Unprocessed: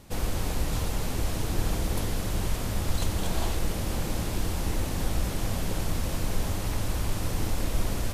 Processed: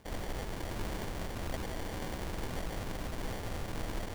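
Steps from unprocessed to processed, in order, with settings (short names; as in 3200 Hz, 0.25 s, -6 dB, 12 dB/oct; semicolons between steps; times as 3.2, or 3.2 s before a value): time stretch by phase-locked vocoder 0.51×; sample-and-hold 34×; low shelf 280 Hz -7 dB; gain -2.5 dB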